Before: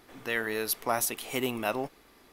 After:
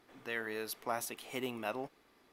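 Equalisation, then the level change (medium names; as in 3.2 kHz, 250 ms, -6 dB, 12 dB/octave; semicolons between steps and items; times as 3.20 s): bass shelf 64 Hz -11 dB; treble shelf 6.8 kHz -7.5 dB; -7.5 dB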